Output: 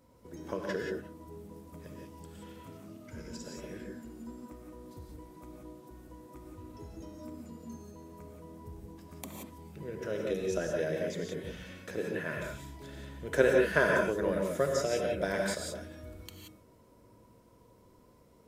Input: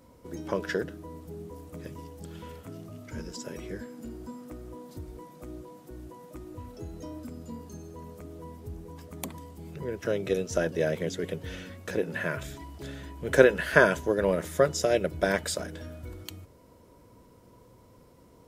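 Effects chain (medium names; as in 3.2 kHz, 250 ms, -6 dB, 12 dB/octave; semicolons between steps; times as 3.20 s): gated-style reverb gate 200 ms rising, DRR 0 dB; trim -7.5 dB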